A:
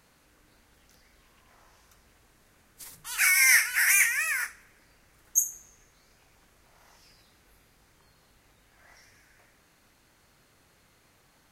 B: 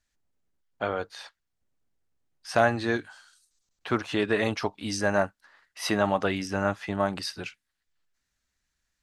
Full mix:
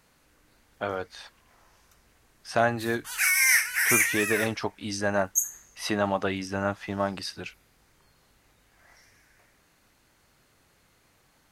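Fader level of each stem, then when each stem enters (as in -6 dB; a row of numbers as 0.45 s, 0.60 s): -1.0 dB, -1.5 dB; 0.00 s, 0.00 s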